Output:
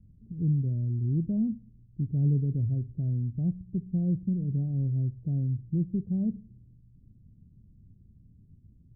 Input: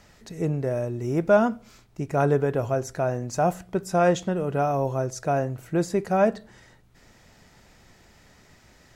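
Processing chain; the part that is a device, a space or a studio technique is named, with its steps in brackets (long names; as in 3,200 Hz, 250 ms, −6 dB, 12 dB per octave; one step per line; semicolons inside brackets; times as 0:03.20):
the neighbour's flat through the wall (low-pass filter 230 Hz 24 dB per octave; parametric band 100 Hz +6 dB 1 octave)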